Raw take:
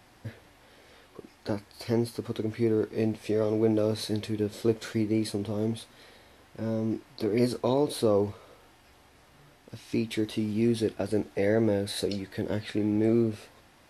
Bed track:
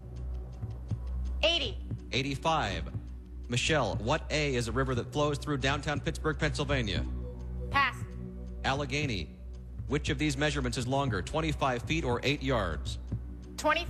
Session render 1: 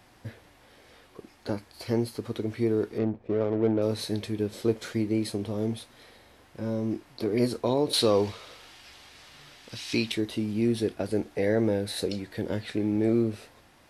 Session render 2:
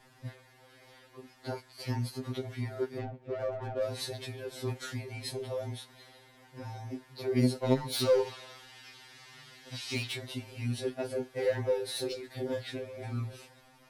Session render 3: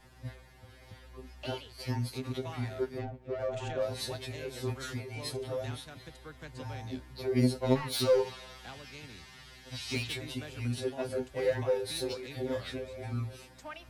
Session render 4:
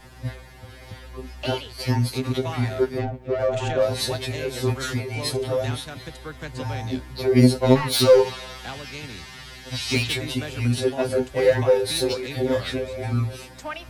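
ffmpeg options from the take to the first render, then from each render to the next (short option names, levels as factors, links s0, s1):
-filter_complex "[0:a]asettb=1/sr,asplit=3[s0][s1][s2];[s0]atrim=end=2.984[s3];[s1]atrim=start=2.98:end=3.82,asetpts=PTS-STARTPTS,afade=t=in:d=0.004:c=qsin,afade=t=out:st=0.836:d=0.004:c=qsin,adynamicsmooth=sensitivity=2:basefreq=620[s4];[s2]atrim=start=3.816[s5];[s3][s4]acrossfade=d=0.004:c1=hsin:c2=qsin[s6];[s6][s5]acrossfade=d=0.004:c1=qsin:c2=hsin,asettb=1/sr,asplit=3[s7][s8][s9];[s7]atrim=end=7.934[s10];[s8]atrim=start=7.93:end=10.12,asetpts=PTS-STARTPTS,afade=t=in:d=0.004:c=qsin,afade=t=out:st=2.186:d=0.004:c=qsin,equalizer=f=4000:w=0.43:g=14[s11];[s9]atrim=start=10.116[s12];[s10][s11]acrossfade=d=0.004:c1=hsin:c2=qsin[s13];[s13][s12]acrossfade=d=0.004:c1=qsin:c2=hsin"
-filter_complex "[0:a]acrossover=split=450[s0][s1];[s1]asoftclip=type=hard:threshold=0.0422[s2];[s0][s2]amix=inputs=2:normalize=0,afftfilt=real='re*2.45*eq(mod(b,6),0)':imag='im*2.45*eq(mod(b,6),0)':win_size=2048:overlap=0.75"
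-filter_complex "[1:a]volume=0.133[s0];[0:a][s0]amix=inputs=2:normalize=0"
-af "volume=3.76,alimiter=limit=0.794:level=0:latency=1"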